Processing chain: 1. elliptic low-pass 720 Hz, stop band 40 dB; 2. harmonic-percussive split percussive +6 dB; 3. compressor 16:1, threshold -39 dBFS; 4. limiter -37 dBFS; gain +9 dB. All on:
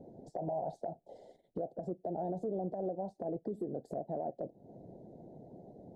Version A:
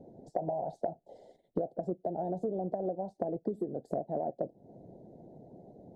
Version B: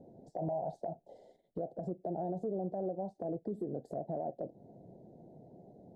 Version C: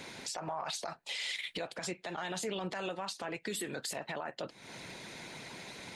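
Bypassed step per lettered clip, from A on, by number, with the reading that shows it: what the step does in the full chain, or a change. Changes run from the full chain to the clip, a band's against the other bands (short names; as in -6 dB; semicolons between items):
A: 4, crest factor change +7.0 dB; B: 2, 125 Hz band +2.0 dB; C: 1, momentary loudness spread change -7 LU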